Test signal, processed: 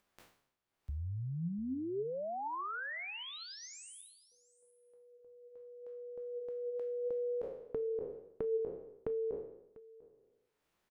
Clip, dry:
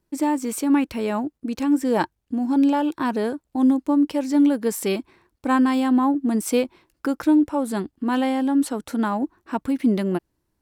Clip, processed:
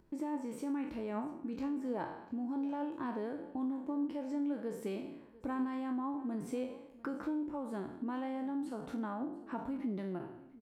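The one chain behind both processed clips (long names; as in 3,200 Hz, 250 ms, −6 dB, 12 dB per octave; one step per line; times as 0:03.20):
peak hold with a decay on every bin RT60 0.54 s
downward compressor 2.5 to 1, threshold −38 dBFS
on a send: single-tap delay 696 ms −20.5 dB
on the sum: flanger 0.82 Hz, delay 4.4 ms, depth 4.1 ms, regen +82%
high-shelf EQ 5,200 Hz −7 dB
upward compression, threshold −58 dBFS
high-shelf EQ 2,500 Hz −10.5 dB
level +1 dB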